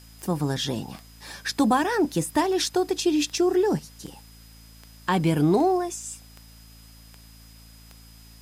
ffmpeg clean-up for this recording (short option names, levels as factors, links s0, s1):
-af "adeclick=t=4,bandreject=f=55.4:t=h:w=4,bandreject=f=110.8:t=h:w=4,bandreject=f=166.2:t=h:w=4,bandreject=f=221.6:t=h:w=4,bandreject=f=277:t=h:w=4,bandreject=f=5000:w=30,agate=range=0.0891:threshold=0.00891"